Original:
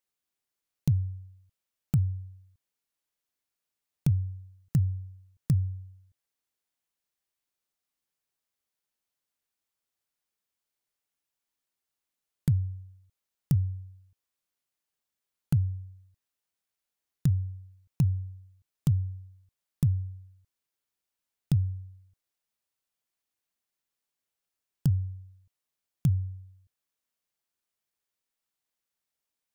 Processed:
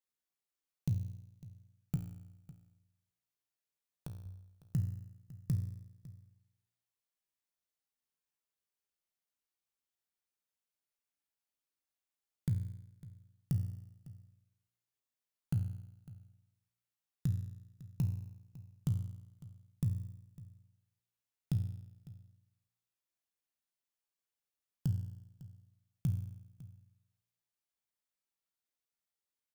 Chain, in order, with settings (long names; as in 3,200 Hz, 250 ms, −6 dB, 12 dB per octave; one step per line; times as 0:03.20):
0:01.96–0:04.26: downward compressor 4 to 1, threshold −37 dBFS, peak gain reduction 14 dB
tuned comb filter 58 Hz, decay 0.92 s, harmonics all, mix 80%
single-tap delay 553 ms −19 dB
level +2 dB